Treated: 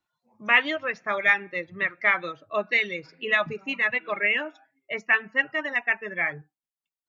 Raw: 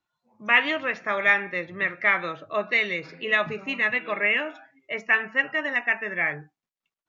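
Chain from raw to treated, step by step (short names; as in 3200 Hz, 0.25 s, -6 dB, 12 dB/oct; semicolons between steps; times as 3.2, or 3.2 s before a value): reverb removal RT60 1.8 s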